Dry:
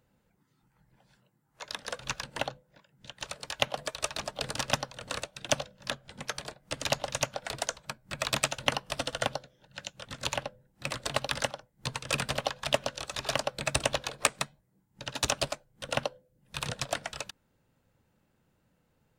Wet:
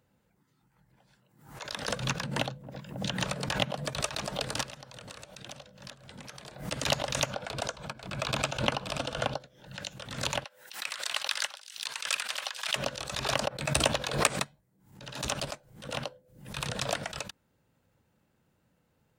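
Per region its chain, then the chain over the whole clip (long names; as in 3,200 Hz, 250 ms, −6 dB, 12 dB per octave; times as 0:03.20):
0:01.88–0:04.01: parametric band 170 Hz +11 dB 1.4 octaves + delay with a low-pass on its return 272 ms, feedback 54%, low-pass 580 Hz, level −17 dB + multiband upward and downward compressor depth 100%
0:04.63–0:06.59: downward compressor 12 to 1, threshold −41 dBFS + single-tap delay 864 ms −21.5 dB
0:07.30–0:09.40: high-shelf EQ 6,100 Hz −11 dB + notch filter 1,900 Hz, Q 7 + single-tap delay 528 ms −22.5 dB
0:10.44–0:12.76: high-pass filter 1,400 Hz + delay with a high-pass on its return 259 ms, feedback 31%, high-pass 3,700 Hz, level −14 dB
0:13.48–0:13.92: high-shelf EQ 12,000 Hz +4 dB + double-tracking delay 13 ms −13 dB + multiband upward and downward expander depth 70%
0:14.44–0:16.57: floating-point word with a short mantissa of 6 bits + transient designer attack −8 dB, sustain 0 dB
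whole clip: high-pass filter 44 Hz; background raised ahead of every attack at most 93 dB per second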